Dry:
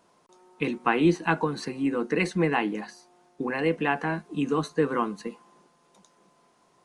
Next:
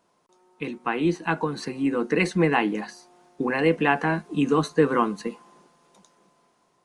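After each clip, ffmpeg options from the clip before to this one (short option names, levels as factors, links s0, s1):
-af "dynaudnorm=f=420:g=7:m=3.76,volume=0.596"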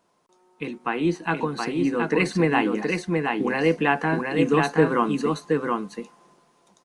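-af "aecho=1:1:723:0.668"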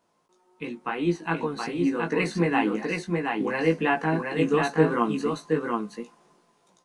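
-af "flanger=delay=17:depth=2:speed=2.8"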